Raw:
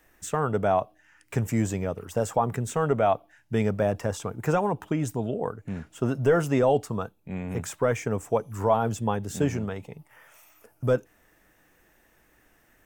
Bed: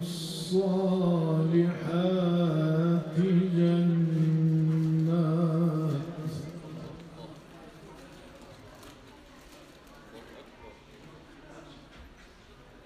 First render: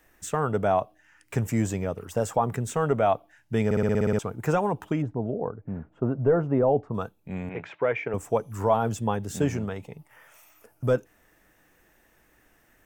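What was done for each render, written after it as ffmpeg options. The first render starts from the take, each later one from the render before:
-filter_complex "[0:a]asplit=3[a][b][c];[a]afade=t=out:st=5.01:d=0.02[d];[b]lowpass=1k,afade=t=in:st=5.01:d=0.02,afade=t=out:st=6.93:d=0.02[e];[c]afade=t=in:st=6.93:d=0.02[f];[d][e][f]amix=inputs=3:normalize=0,asettb=1/sr,asplit=3[g][h][i];[g]atrim=end=7.494[j];[h]atrim=start=7.49:end=8.14,asetpts=PTS-STARTPTS,afade=t=in:d=0.004:c=qsin,afade=t=out:st=0.646:d=0.004:c=qsin,highpass=200,equalizer=f=230:t=q:w=4:g=-9,equalizer=f=1.2k:t=q:w=4:g=-4,equalizer=f=2.3k:t=q:w=4:g=7,lowpass=f=3.2k:w=0.5412,lowpass=f=3.2k:w=1.3066[k];[i]atrim=start=8.136[l];[j][k]acrossfade=d=0.004:c1=hsin:c2=qsin[m];[m][l]acrossfade=d=0.004:c1=qsin:c2=hsin,asplit=10[n][o][p][q][r][s][t][u][v][w];[n]atrim=end=3.712[x];[o]atrim=start=3.648:end=3.712[y];[p]atrim=start=3.648:end=3.712[z];[q]atrim=start=3.648:end=3.712[aa];[r]atrim=start=3.648:end=3.712[ab];[s]atrim=start=3.648:end=3.712[ac];[t]atrim=start=3.648:end=3.712[ad];[u]atrim=start=3.648:end=3.712[ae];[v]atrim=start=3.648:end=3.712[af];[w]atrim=start=4.188[ag];[x][y]acrossfade=d=0.004:c1=hsin:c2=hsin[ah];[ah][z]acrossfade=d=0.004:c1=hsin:c2=hsin[ai];[ai][aa]acrossfade=d=0.004:c1=hsin:c2=hsin[aj];[aj][ab]acrossfade=d=0.004:c1=hsin:c2=hsin[ak];[ak][ac]acrossfade=d=0.004:c1=hsin:c2=hsin[al];[al][ad]acrossfade=d=0.004:c1=hsin:c2=hsin[am];[am][ae]acrossfade=d=0.004:c1=hsin:c2=hsin[an];[an][af]acrossfade=d=0.004:c1=hsin:c2=hsin[ao];[ao][ag]acrossfade=d=0.004:c1=hsin:c2=hsin"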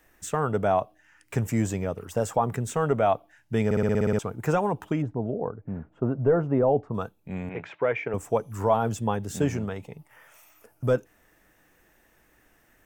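-af anull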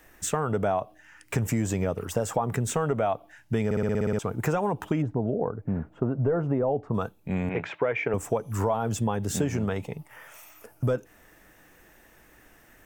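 -filter_complex "[0:a]asplit=2[a][b];[b]alimiter=limit=-20dB:level=0:latency=1:release=87,volume=0.5dB[c];[a][c]amix=inputs=2:normalize=0,acompressor=threshold=-22dB:ratio=6"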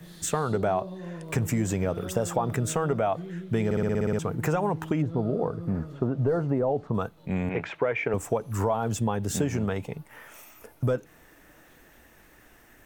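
-filter_complex "[1:a]volume=-12.5dB[a];[0:a][a]amix=inputs=2:normalize=0"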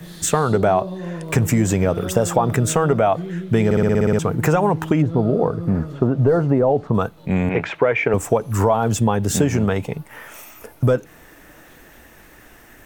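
-af "volume=9dB"

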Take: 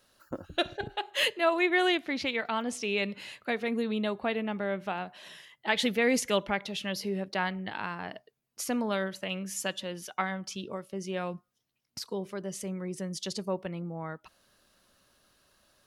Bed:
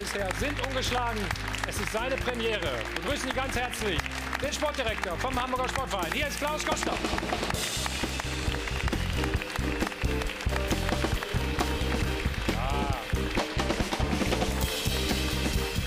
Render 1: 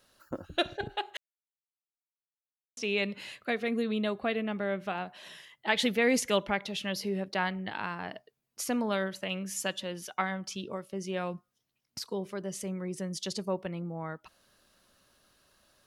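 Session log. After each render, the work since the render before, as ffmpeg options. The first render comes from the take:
-filter_complex "[0:a]asettb=1/sr,asplit=3[a][b][c];[a]atrim=end=3.324[d];[b]atrim=start=3.32:end=4.95,asetpts=PTS-STARTPTS,afade=t=in:d=0.004:c=qsin,afade=t=out:st=1.626:d=0.004:c=qsin,bandreject=f=900:w=6.6[e];[c]atrim=start=4.946[f];[d][e]acrossfade=d=0.004:c1=hsin:c2=qsin[g];[g][f]acrossfade=d=0.004:c1=qsin:c2=hsin,asplit=3[h][i][j];[h]atrim=end=1.17,asetpts=PTS-STARTPTS,afade=t=out:st=1.166:d=0.004:c=hsin[k];[i]atrim=start=1.17:end=2.77,asetpts=PTS-STARTPTS,volume=0[l];[j]atrim=start=2.77,asetpts=PTS-STARTPTS,afade=t=in:d=0.004:c=hsin[m];[k][l][m]concat=n=3:v=0:a=1"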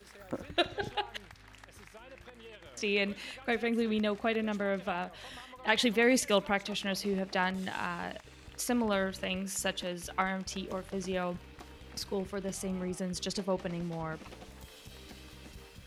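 -filter_complex "[1:a]volume=-22dB[a];[0:a][a]amix=inputs=2:normalize=0"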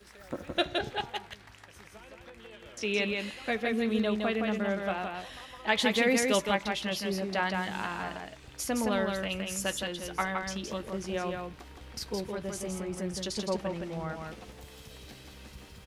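-filter_complex "[0:a]asplit=2[a][b];[b]adelay=14,volume=-12dB[c];[a][c]amix=inputs=2:normalize=0,aecho=1:1:166:0.631"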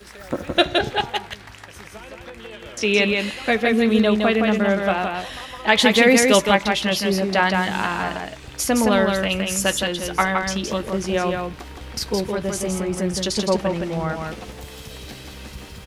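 -af "volume=11.5dB,alimiter=limit=-1dB:level=0:latency=1"

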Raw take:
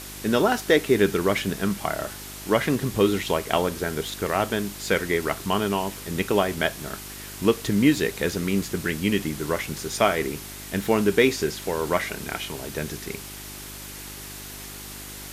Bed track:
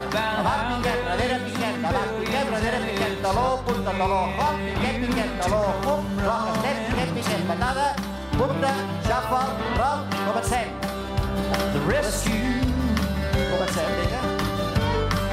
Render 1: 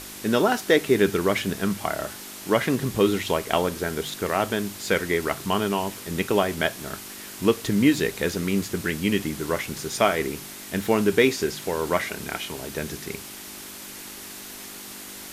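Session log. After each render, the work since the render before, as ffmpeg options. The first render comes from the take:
-af "bandreject=f=50:t=h:w=4,bandreject=f=100:t=h:w=4,bandreject=f=150:t=h:w=4"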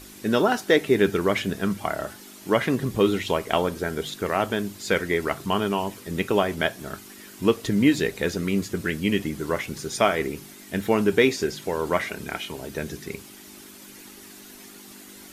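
-af "afftdn=nr=9:nf=-40"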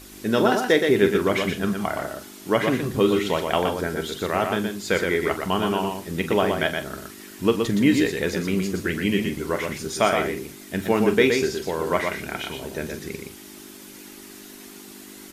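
-filter_complex "[0:a]asplit=2[a][b];[b]adelay=43,volume=-12dB[c];[a][c]amix=inputs=2:normalize=0,aecho=1:1:120:0.562"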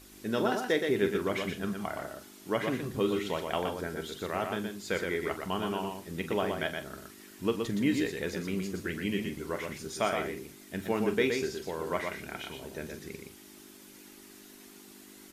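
-af "volume=-9.5dB"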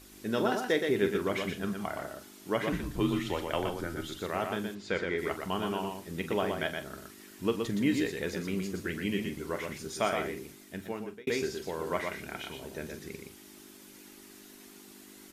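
-filter_complex "[0:a]asettb=1/sr,asplit=3[a][b][c];[a]atrim=end=2.724[d];[b]atrim=start=2.72:end=4.2,asetpts=PTS-STARTPTS,afade=t=in:d=0.004:c=qsin,afade=t=out:st=1.476:d=0.004:c=qsin,afreqshift=-76[e];[c]atrim=start=4.196[f];[d][e]acrossfade=d=0.004:c1=hsin:c2=qsin[g];[g][f]acrossfade=d=0.004:c1=qsin:c2=hsin,asplit=3[h][i][j];[h]afade=t=out:st=4.74:d=0.02[k];[i]lowpass=4.6k,afade=t=in:st=4.74:d=0.02,afade=t=out:st=5.17:d=0.02[l];[j]afade=t=in:st=5.17:d=0.02[m];[k][l][m]amix=inputs=3:normalize=0,asplit=2[n][o];[n]atrim=end=11.27,asetpts=PTS-STARTPTS,afade=t=out:st=10.5:d=0.77[p];[o]atrim=start=11.27,asetpts=PTS-STARTPTS,afade=t=in:d=0.004:c=hsin[q];[p][q]concat=n=2:v=0:a=1"

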